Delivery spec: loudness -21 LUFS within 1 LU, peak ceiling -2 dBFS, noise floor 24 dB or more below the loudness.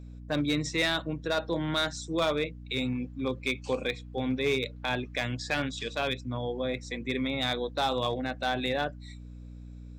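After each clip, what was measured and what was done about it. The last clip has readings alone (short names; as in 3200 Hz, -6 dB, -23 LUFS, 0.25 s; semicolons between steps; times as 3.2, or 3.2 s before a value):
clipped 0.5%; flat tops at -20.5 dBFS; hum 60 Hz; harmonics up to 300 Hz; hum level -40 dBFS; loudness -30.5 LUFS; peak -20.5 dBFS; loudness target -21.0 LUFS
-> clip repair -20.5 dBFS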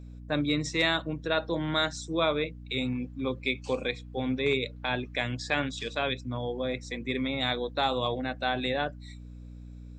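clipped 0.0%; hum 60 Hz; harmonics up to 300 Hz; hum level -40 dBFS
-> de-hum 60 Hz, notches 5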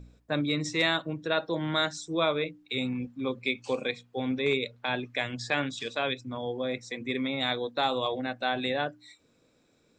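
hum none; loudness -30.0 LUFS; peak -12.5 dBFS; loudness target -21.0 LUFS
-> gain +9 dB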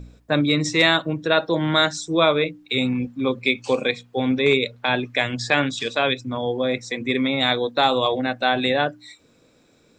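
loudness -21.0 LUFS; peak -3.5 dBFS; noise floor -58 dBFS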